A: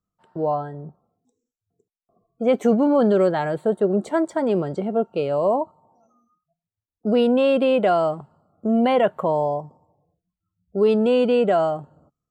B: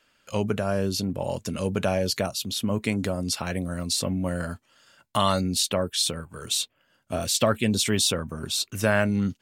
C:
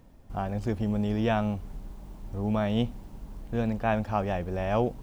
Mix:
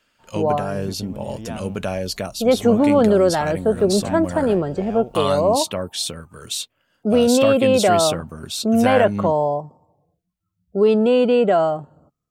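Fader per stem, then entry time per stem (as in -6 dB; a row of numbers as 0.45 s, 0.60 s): +2.5 dB, -0.5 dB, -7.5 dB; 0.00 s, 0.00 s, 0.20 s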